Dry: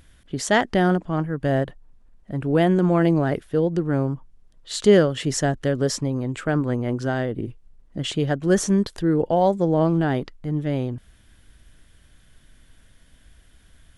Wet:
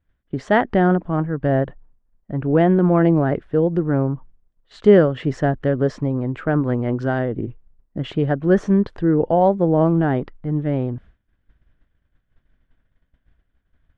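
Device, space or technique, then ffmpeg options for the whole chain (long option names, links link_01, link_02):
hearing-loss simulation: -filter_complex "[0:a]lowpass=1800,agate=range=-33dB:threshold=-40dB:ratio=3:detection=peak,asettb=1/sr,asplit=3[link_01][link_02][link_03];[link_01]atrim=end=6.644[link_04];[link_02]atrim=start=6.64:end=7.19,asetpts=PTS-STARTPTS,afade=type=in:duration=0.004:curve=qsin,afade=type=out:start_time=0.546:duration=0.004:curve=qsin,equalizer=frequency=10000:width=0.33:gain=9[link_05];[link_03]atrim=start=7.186[link_06];[link_04][link_05]acrossfade=duration=0.004:curve1=hsin:curve2=qsin[link_07];[link_07][link_06]acrossfade=duration=0.004:curve1=qsin:curve2=hsin,volume=3dB"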